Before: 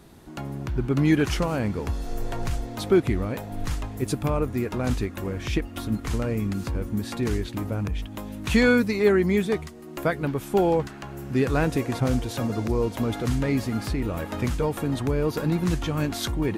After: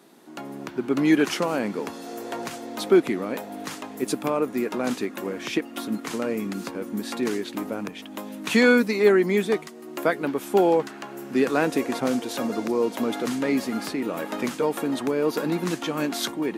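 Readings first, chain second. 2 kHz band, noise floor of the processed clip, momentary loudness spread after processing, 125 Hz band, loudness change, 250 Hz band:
+2.5 dB, -41 dBFS, 14 LU, -11.5 dB, +1.0 dB, +0.5 dB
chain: HPF 220 Hz 24 dB/oct; AGC gain up to 3.5 dB; gain -1 dB

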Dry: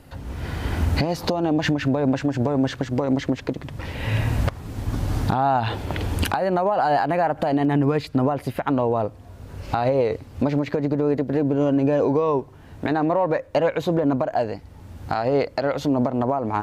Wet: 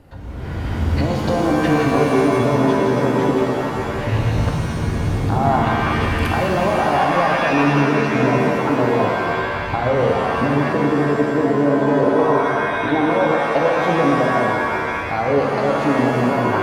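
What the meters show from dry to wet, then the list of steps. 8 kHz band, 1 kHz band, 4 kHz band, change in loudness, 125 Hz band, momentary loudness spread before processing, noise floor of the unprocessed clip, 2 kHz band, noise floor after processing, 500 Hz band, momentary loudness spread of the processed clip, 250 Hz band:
+5.0 dB, +6.0 dB, +4.5 dB, +5.0 dB, +4.0 dB, 9 LU, -44 dBFS, +11.0 dB, -24 dBFS, +5.0 dB, 6 LU, +4.0 dB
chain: high shelf 2800 Hz -10 dB; shimmer reverb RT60 2.3 s, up +7 st, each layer -2 dB, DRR 0 dB

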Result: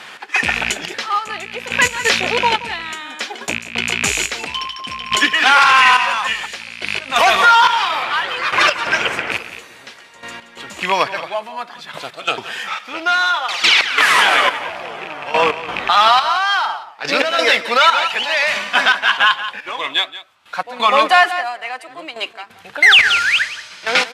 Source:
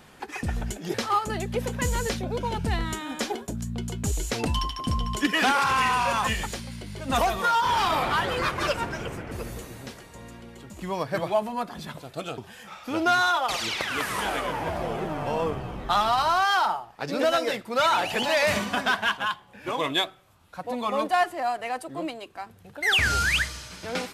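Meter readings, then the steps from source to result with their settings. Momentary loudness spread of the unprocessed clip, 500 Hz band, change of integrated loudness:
16 LU, +5.0 dB, +11.0 dB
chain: rattling part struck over -32 dBFS, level -26 dBFS; step gate "x.xxx....." 88 bpm -12 dB; band-pass 2400 Hz, Q 0.82; on a send: echo 0.176 s -15.5 dB; on the sum: maximiser +22.5 dB; gain -1 dB

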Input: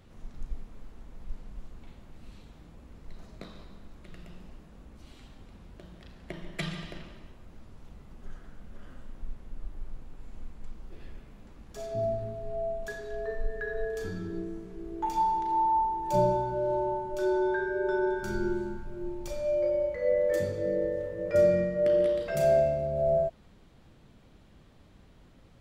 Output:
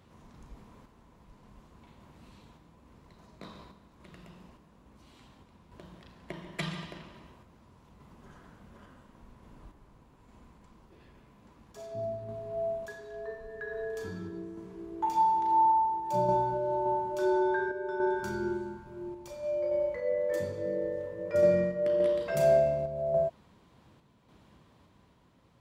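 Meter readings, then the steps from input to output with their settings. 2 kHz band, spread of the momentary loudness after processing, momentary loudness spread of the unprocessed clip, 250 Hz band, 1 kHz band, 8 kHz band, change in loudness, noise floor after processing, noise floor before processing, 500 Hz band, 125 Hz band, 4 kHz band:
-2.0 dB, 18 LU, 22 LU, -2.0 dB, +1.5 dB, n/a, -1.0 dB, -62 dBFS, -56 dBFS, -2.0 dB, -3.5 dB, -1.5 dB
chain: HPF 78 Hz 12 dB/oct; bell 1000 Hz +10 dB 0.26 oct; random-step tremolo

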